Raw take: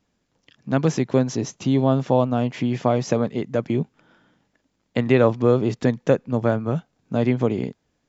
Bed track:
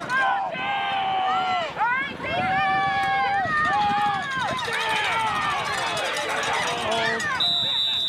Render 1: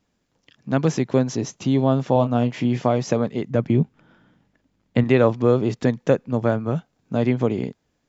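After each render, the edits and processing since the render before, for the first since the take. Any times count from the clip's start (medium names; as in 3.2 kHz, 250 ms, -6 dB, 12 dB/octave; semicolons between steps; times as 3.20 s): 2.13–2.87 s: doubling 25 ms -9.5 dB; 3.50–5.04 s: tone controls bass +7 dB, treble -5 dB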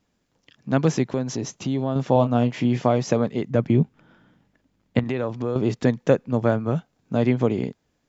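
1.06–1.96 s: compression 2:1, threshold -24 dBFS; 4.99–5.56 s: compression 3:1, threshold -24 dBFS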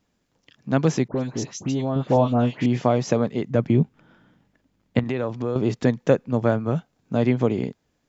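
1.08–2.66 s: phase dispersion highs, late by 92 ms, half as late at 1.9 kHz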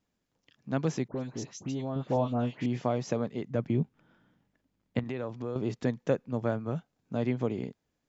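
trim -9.5 dB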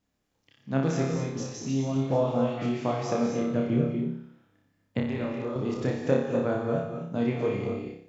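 flutter echo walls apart 5.1 m, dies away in 0.57 s; gated-style reverb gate 280 ms rising, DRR 3 dB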